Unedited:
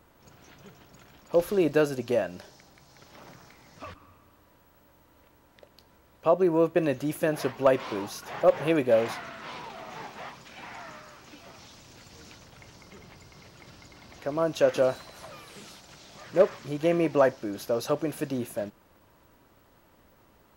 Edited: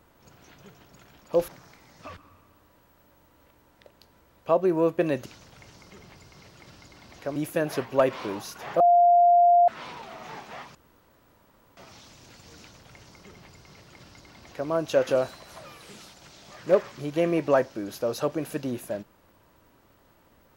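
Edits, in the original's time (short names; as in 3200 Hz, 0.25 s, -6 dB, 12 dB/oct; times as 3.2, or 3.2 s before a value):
1.48–3.25 cut
8.47–9.35 bleep 699 Hz -14 dBFS
10.42–11.44 room tone
12.26–14.36 copy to 7.03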